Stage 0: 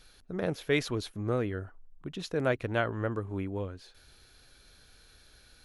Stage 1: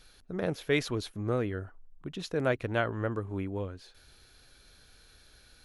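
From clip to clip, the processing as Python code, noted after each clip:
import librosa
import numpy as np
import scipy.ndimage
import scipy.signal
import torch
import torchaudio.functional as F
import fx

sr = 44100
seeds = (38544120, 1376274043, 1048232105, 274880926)

y = x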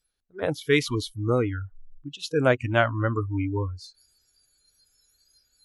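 y = fx.noise_reduce_blind(x, sr, reduce_db=29)
y = fx.rider(y, sr, range_db=3, speed_s=2.0)
y = F.gain(torch.from_numpy(y), 8.5).numpy()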